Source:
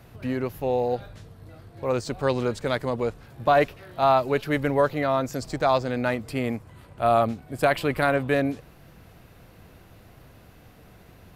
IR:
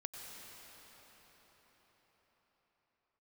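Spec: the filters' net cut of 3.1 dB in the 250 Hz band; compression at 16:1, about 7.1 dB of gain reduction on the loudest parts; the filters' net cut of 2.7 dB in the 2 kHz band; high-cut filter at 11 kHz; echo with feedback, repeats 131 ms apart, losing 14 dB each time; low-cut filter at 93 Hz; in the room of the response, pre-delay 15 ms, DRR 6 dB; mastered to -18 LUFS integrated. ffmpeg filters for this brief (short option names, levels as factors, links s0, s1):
-filter_complex "[0:a]highpass=93,lowpass=11000,equalizer=f=250:t=o:g=-3.5,equalizer=f=2000:t=o:g=-3.5,acompressor=threshold=0.0794:ratio=16,aecho=1:1:131|262:0.2|0.0399,asplit=2[s0][s1];[1:a]atrim=start_sample=2205,adelay=15[s2];[s1][s2]afir=irnorm=-1:irlink=0,volume=0.596[s3];[s0][s3]amix=inputs=2:normalize=0,volume=3.76"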